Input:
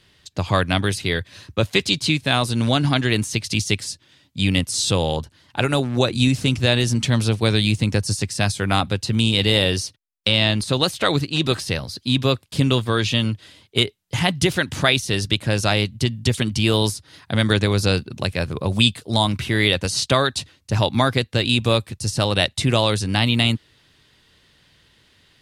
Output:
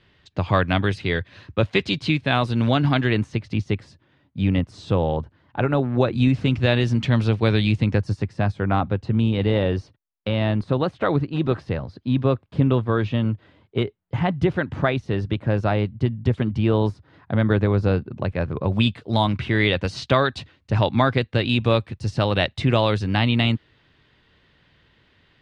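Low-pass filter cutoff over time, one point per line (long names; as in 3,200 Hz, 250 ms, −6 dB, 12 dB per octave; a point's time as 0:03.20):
0:03.03 2,600 Hz
0:03.43 1,400 Hz
0:05.69 1,400 Hz
0:06.67 2,500 Hz
0:07.80 2,500 Hz
0:08.33 1,300 Hz
0:18.16 1,300 Hz
0:19.15 2,600 Hz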